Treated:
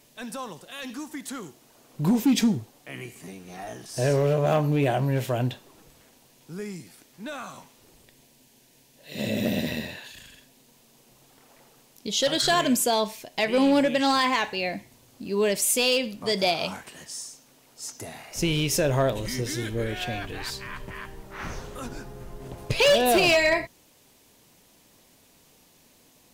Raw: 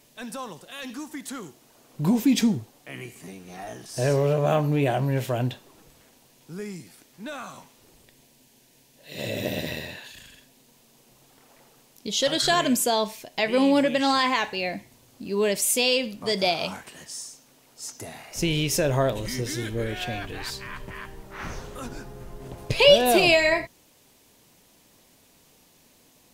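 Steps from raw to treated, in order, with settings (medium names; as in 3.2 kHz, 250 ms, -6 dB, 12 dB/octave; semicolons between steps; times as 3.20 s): 9.15–9.88 s: peaking EQ 220 Hz +12 dB 0.38 oct; hard clipper -15 dBFS, distortion -15 dB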